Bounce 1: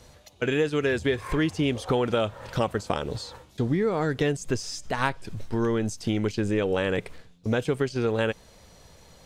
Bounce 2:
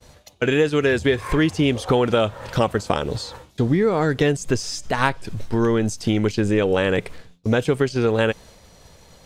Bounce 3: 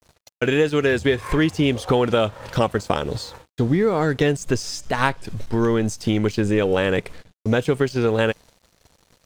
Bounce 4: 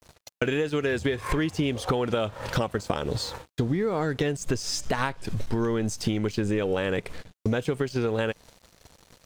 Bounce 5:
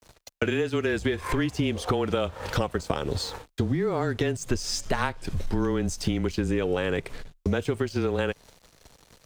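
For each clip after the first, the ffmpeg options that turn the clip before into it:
ffmpeg -i in.wav -af "agate=range=-33dB:threshold=-48dB:ratio=3:detection=peak,volume=6dB" out.wav
ffmpeg -i in.wav -af "aeval=exprs='sgn(val(0))*max(abs(val(0))-0.00473,0)':channel_layout=same" out.wav
ffmpeg -i in.wav -af "acompressor=threshold=-26dB:ratio=6,volume=3dB" out.wav
ffmpeg -i in.wav -af "afreqshift=-22" out.wav

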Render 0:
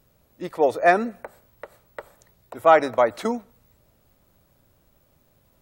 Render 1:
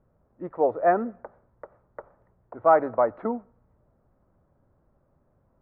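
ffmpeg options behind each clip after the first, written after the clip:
ffmpeg -i in.wav -af "lowpass=frequency=1400:width=0.5412,lowpass=frequency=1400:width=1.3066,volume=-3dB" out.wav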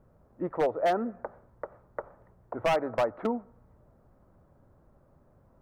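ffmpeg -i in.wav -af "acompressor=threshold=-34dB:ratio=2,aeval=exprs='0.0668*(abs(mod(val(0)/0.0668+3,4)-2)-1)':channel_layout=same,volume=5dB" out.wav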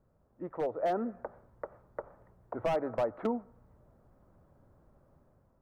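ffmpeg -i in.wav -filter_complex "[0:a]acrossover=split=740[link_01][link_02];[link_02]alimiter=level_in=5dB:limit=-24dB:level=0:latency=1:release=151,volume=-5dB[link_03];[link_01][link_03]amix=inputs=2:normalize=0,dynaudnorm=framelen=470:gausssize=3:maxgain=7dB,volume=-9dB" out.wav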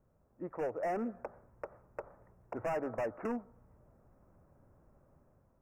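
ffmpeg -i in.wav -af "asoftclip=type=hard:threshold=-29.5dB,asuperstop=centerf=3800:order=20:qfactor=1.7,volume=-1.5dB" out.wav

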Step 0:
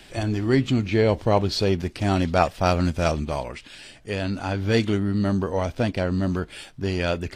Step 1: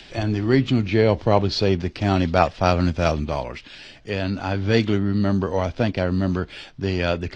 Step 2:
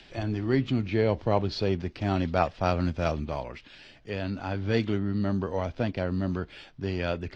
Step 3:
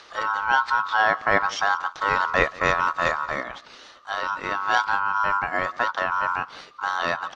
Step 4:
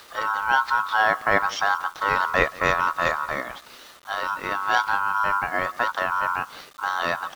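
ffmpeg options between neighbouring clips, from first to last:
ffmpeg -i in.wav -filter_complex "[0:a]lowpass=frequency=5800:width=0.5412,lowpass=frequency=5800:width=1.3066,acrossover=split=130|2400[link_01][link_02][link_03];[link_03]acompressor=mode=upward:threshold=-45dB:ratio=2.5[link_04];[link_01][link_02][link_04]amix=inputs=3:normalize=0,volume=2dB" out.wav
ffmpeg -i in.wav -af "highshelf=frequency=4900:gain=-7,volume=-7dB" out.wav
ffmpeg -i in.wav -af "aecho=1:1:178:0.0841,aeval=exprs='val(0)*sin(2*PI*1200*n/s)':channel_layout=same,volume=7dB" out.wav
ffmpeg -i in.wav -af "acrusher=bits=7:mix=0:aa=0.000001" out.wav

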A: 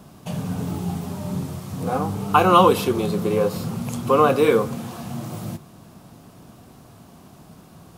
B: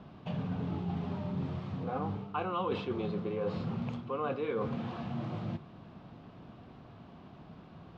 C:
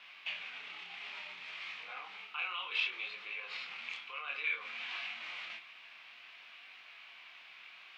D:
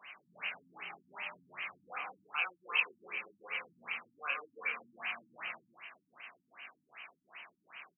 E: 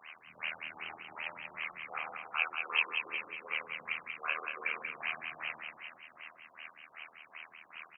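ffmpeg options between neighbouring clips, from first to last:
ffmpeg -i in.wav -af "lowpass=frequency=3600:width=0.5412,lowpass=frequency=3600:width=1.3066,areverse,acompressor=threshold=-26dB:ratio=8,areverse,volume=-5dB" out.wav
ffmpeg -i in.wav -af "alimiter=level_in=7.5dB:limit=-24dB:level=0:latency=1:release=25,volume=-7.5dB,highpass=frequency=2300:width_type=q:width=3.9,flanger=delay=20:depth=7.9:speed=0.6,volume=10.5dB" out.wav
ffmpeg -i in.wav -af "aecho=1:1:158:0.631,afftfilt=real='re*lt(b*sr/1024,290*pow(3200/290,0.5+0.5*sin(2*PI*2.6*pts/sr)))':imag='im*lt(b*sr/1024,290*pow(3200/290,0.5+0.5*sin(2*PI*2.6*pts/sr)))':win_size=1024:overlap=0.75,volume=5dB" out.wav
ffmpeg -i in.wav -filter_complex "[0:a]tremolo=f=79:d=0.947,asplit=2[link_01][link_02];[link_02]aecho=0:1:186|372|558|744|930:0.531|0.212|0.0849|0.034|0.0136[link_03];[link_01][link_03]amix=inputs=2:normalize=0,volume=5.5dB" out.wav

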